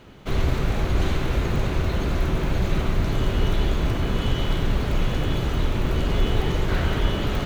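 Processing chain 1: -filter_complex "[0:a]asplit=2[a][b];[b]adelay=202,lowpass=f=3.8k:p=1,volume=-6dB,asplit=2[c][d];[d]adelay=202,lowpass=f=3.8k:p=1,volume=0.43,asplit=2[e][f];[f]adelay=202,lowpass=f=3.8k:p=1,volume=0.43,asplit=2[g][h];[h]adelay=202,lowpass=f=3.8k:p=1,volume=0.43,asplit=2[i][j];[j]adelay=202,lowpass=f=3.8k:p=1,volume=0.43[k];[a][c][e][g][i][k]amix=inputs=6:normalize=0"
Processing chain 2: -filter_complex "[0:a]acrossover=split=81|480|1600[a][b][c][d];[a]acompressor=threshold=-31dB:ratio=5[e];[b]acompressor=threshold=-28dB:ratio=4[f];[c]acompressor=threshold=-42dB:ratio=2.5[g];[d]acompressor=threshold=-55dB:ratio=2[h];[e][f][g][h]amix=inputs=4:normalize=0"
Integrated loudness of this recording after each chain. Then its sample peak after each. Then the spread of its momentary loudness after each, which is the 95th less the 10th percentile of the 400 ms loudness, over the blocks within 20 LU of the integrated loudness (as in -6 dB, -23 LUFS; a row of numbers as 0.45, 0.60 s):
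-24.0, -30.5 LUFS; -7.5, -16.5 dBFS; 1, 1 LU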